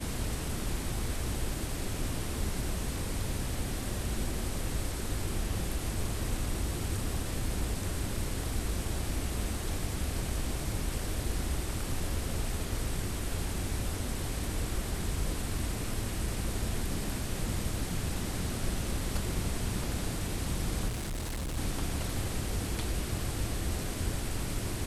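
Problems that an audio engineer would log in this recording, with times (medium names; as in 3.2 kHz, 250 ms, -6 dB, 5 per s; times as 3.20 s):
20.88–21.58 s: clipped -32 dBFS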